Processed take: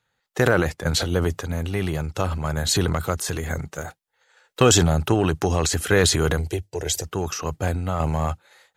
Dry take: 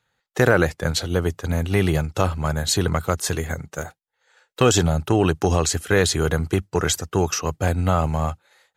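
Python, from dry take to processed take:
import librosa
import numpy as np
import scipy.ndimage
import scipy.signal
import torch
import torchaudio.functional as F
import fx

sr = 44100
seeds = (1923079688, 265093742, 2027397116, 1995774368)

y = fx.tremolo_random(x, sr, seeds[0], hz=3.5, depth_pct=55)
y = fx.fixed_phaser(y, sr, hz=510.0, stages=4, at=(6.37, 7.04))
y = fx.transient(y, sr, attack_db=1, sustain_db=8)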